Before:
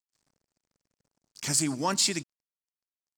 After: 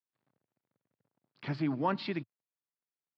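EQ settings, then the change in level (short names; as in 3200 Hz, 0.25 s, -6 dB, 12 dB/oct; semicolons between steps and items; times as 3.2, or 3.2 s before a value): elliptic band-pass 110–4300 Hz; air absorption 440 m; 0.0 dB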